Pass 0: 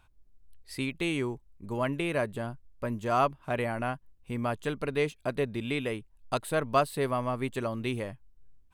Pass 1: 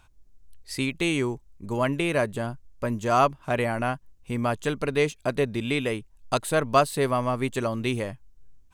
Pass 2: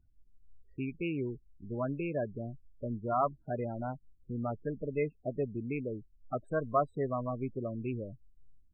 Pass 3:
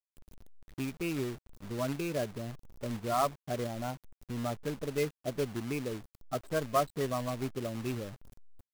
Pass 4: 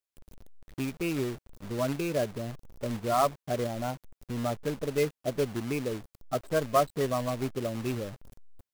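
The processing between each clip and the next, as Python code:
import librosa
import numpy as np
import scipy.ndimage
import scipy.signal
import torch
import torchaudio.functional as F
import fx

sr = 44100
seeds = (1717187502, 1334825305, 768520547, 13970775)

y1 = fx.peak_eq(x, sr, hz=6500.0, db=7.0, octaves=0.77)
y1 = y1 * 10.0 ** (5.0 / 20.0)
y2 = fx.wiener(y1, sr, points=41)
y2 = fx.env_lowpass(y2, sr, base_hz=1900.0, full_db=-21.5)
y2 = fx.spec_topn(y2, sr, count=16)
y2 = y2 * 10.0 ** (-7.5 / 20.0)
y3 = fx.quant_companded(y2, sr, bits=4)
y4 = fx.peak_eq(y3, sr, hz=540.0, db=2.5, octaves=0.77)
y4 = y4 * 10.0 ** (3.0 / 20.0)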